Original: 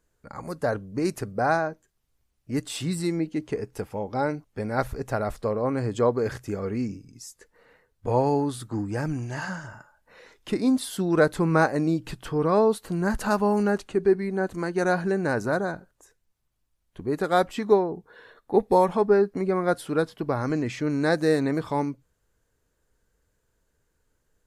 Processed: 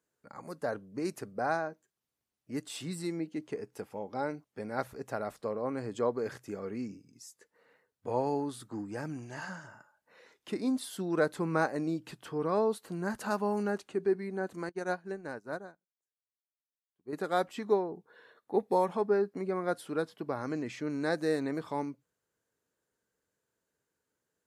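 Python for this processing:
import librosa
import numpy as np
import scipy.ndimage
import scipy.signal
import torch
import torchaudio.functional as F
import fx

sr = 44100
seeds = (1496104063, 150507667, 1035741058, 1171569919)

y = scipy.signal.sosfilt(scipy.signal.butter(2, 170.0, 'highpass', fs=sr, output='sos'), x)
y = fx.upward_expand(y, sr, threshold_db=-43.0, expansion=2.5, at=(14.69, 17.13))
y = F.gain(torch.from_numpy(y), -8.0).numpy()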